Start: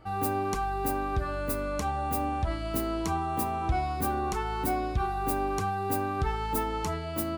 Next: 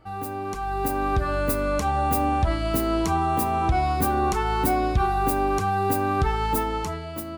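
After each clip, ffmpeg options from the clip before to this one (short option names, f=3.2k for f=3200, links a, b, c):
-af "alimiter=limit=-20dB:level=0:latency=1:release=186,dynaudnorm=f=120:g=13:m=9dB,volume=-1dB"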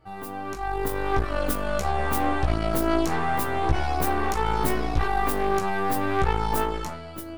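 -af "aeval=exprs='0.266*(cos(1*acos(clip(val(0)/0.266,-1,1)))-cos(1*PI/2))+0.0841*(cos(4*acos(clip(val(0)/0.266,-1,1)))-cos(4*PI/2))':c=same,flanger=delay=15.5:depth=2.9:speed=0.54,volume=-1dB"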